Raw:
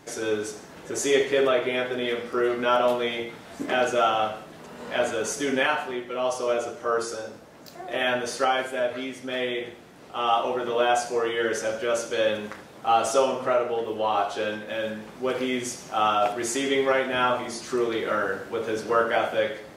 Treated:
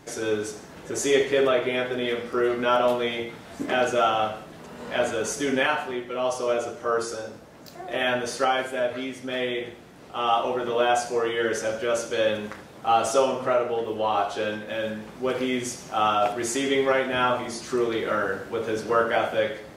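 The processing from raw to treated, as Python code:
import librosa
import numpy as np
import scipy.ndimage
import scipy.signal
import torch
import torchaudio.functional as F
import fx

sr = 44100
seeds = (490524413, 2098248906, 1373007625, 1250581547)

y = fx.low_shelf(x, sr, hz=140.0, db=6.0)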